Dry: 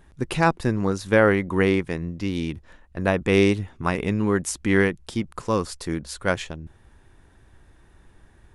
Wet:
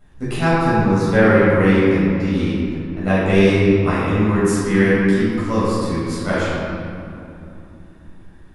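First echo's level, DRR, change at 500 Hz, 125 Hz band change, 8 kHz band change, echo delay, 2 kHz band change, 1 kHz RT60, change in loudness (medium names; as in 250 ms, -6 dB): no echo, -10.5 dB, +6.0 dB, +8.0 dB, +0.5 dB, no echo, +4.5 dB, 2.8 s, +6.0 dB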